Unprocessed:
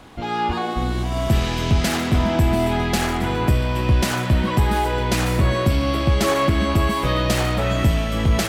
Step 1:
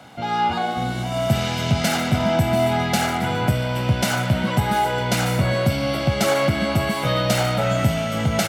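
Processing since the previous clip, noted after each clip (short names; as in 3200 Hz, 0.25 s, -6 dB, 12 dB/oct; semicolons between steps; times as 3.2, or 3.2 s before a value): HPF 110 Hz 24 dB/oct; comb 1.4 ms, depth 55%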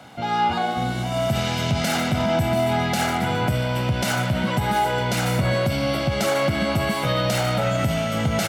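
limiter -12.5 dBFS, peak gain reduction 6 dB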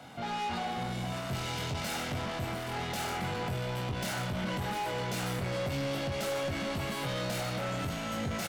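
soft clip -27 dBFS, distortion -8 dB; doubler 22 ms -5 dB; gain -5.5 dB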